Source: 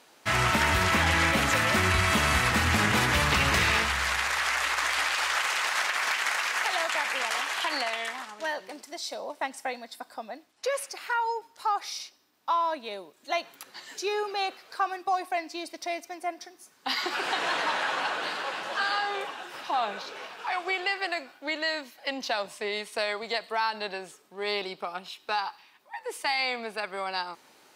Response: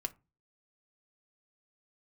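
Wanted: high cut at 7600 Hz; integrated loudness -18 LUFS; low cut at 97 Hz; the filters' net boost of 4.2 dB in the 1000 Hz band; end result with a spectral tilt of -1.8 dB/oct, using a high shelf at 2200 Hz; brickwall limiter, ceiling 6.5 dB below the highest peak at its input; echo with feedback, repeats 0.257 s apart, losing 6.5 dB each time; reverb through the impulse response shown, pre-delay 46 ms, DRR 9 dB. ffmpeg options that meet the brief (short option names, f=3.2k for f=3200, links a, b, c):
-filter_complex "[0:a]highpass=97,lowpass=7.6k,equalizer=f=1k:t=o:g=7,highshelf=f=2.2k:g=-8,alimiter=limit=-17dB:level=0:latency=1,aecho=1:1:257|514|771|1028|1285|1542:0.473|0.222|0.105|0.0491|0.0231|0.0109,asplit=2[a][b];[1:a]atrim=start_sample=2205,adelay=46[c];[b][c]afir=irnorm=-1:irlink=0,volume=-9dB[d];[a][d]amix=inputs=2:normalize=0,volume=9.5dB"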